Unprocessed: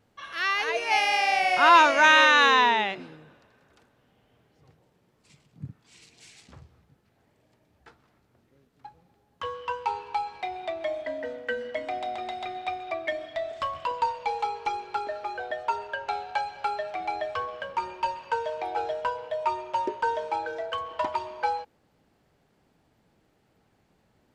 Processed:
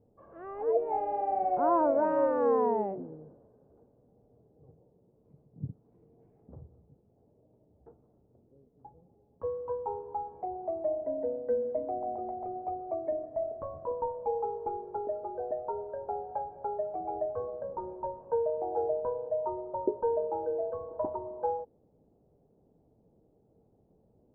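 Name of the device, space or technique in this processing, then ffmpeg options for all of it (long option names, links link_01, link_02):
under water: -af "lowpass=frequency=680:width=0.5412,lowpass=frequency=680:width=1.3066,equalizer=frequency=450:width_type=o:width=0.32:gain=5,volume=1dB"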